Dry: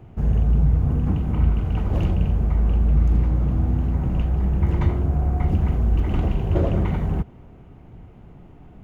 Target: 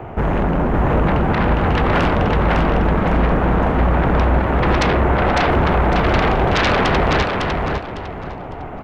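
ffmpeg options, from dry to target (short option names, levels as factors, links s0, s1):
-filter_complex "[0:a]acrossover=split=440 2200:gain=0.158 1 0.126[s0][s1][s2];[s0][s1][s2]amix=inputs=3:normalize=0,aeval=exprs='0.168*sin(PI/2*8.91*val(0)/0.168)':c=same,aecho=1:1:554|1108|1662|2216:0.668|0.174|0.0452|0.0117,volume=1.19"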